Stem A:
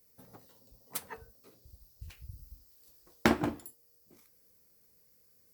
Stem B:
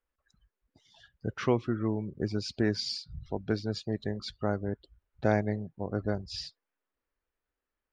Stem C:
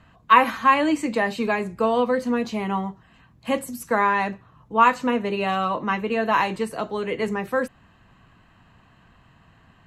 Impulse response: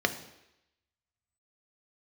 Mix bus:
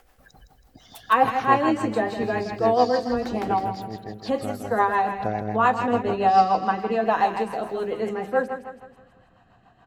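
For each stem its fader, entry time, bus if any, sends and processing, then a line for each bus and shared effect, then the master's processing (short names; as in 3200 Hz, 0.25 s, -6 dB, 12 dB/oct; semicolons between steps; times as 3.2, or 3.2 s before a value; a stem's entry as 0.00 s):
-3.0 dB, 0.00 s, no send, echo send -6.5 dB, auto duck -12 dB, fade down 2.00 s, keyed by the second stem
-2.5 dB, 0.00 s, no send, echo send -7 dB, upward compressor, threshold -31 dBFS
-3.5 dB, 0.80 s, send -15.5 dB, echo send -7.5 dB, high shelf 8100 Hz -5 dB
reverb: on, RT60 0.85 s, pre-delay 3 ms
echo: feedback echo 0.162 s, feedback 47%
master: bell 760 Hz +14.5 dB 0.26 oct; rotary speaker horn 7 Hz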